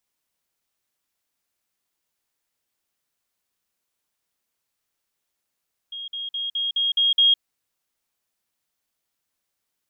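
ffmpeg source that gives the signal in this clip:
ffmpeg -f lavfi -i "aevalsrc='pow(10,(-31+3*floor(t/0.21))/20)*sin(2*PI*3260*t)*clip(min(mod(t,0.21),0.16-mod(t,0.21))/0.005,0,1)':duration=1.47:sample_rate=44100" out.wav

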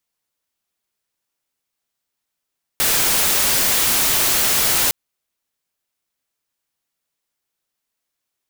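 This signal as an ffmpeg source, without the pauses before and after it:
ffmpeg -f lavfi -i "anoisesrc=color=white:amplitude=0.245:duration=2.11:sample_rate=44100:seed=1" out.wav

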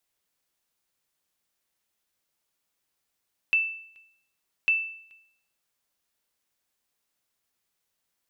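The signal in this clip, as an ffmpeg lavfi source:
ffmpeg -f lavfi -i "aevalsrc='0.158*(sin(2*PI*2650*mod(t,1.15))*exp(-6.91*mod(t,1.15)/0.63)+0.0355*sin(2*PI*2650*max(mod(t,1.15)-0.43,0))*exp(-6.91*max(mod(t,1.15)-0.43,0)/0.63))':duration=2.3:sample_rate=44100" out.wav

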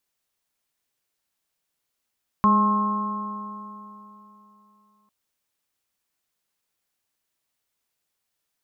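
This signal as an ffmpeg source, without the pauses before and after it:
ffmpeg -f lavfi -i "aevalsrc='0.126*pow(10,-3*t/3.21)*sin(2*PI*206.32*t)+0.0224*pow(10,-3*t/3.21)*sin(2*PI*414.55*t)+0.015*pow(10,-3*t/3.21)*sin(2*PI*626.56*t)+0.0266*pow(10,-3*t/3.21)*sin(2*PI*844.19*t)+0.178*pow(10,-3*t/3.21)*sin(2*PI*1069.17*t)+0.0237*pow(10,-3*t/3.21)*sin(2*PI*1303.14*t)':duration=2.65:sample_rate=44100" out.wav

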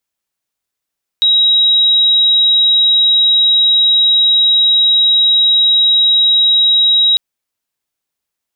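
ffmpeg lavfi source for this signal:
ffmpeg -f lavfi -i "sine=frequency=3830:duration=5.95:sample_rate=44100,volume=11.06dB" out.wav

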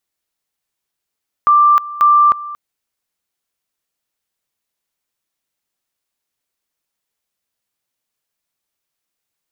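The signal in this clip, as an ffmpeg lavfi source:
ffmpeg -f lavfi -i "aevalsrc='pow(10,(-6.5-18*gte(mod(t,0.54),0.31))/20)*sin(2*PI*1180*t)':duration=1.08:sample_rate=44100" out.wav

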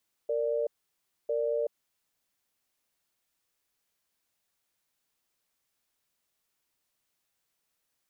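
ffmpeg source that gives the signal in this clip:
ffmpeg -f lavfi -i "aevalsrc='0.0355*(sin(2*PI*462*t)+sin(2*PI*588*t))*clip(min(mod(t,1),0.38-mod(t,1))/0.005,0,1)':duration=1.68:sample_rate=44100" out.wav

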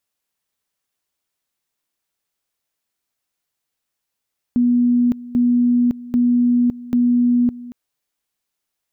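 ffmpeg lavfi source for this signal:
ffmpeg -f lavfi -i "aevalsrc='pow(10,(-12-18.5*gte(mod(t,0.79),0.56))/20)*sin(2*PI*243*t)':duration=3.16:sample_rate=44100" out.wav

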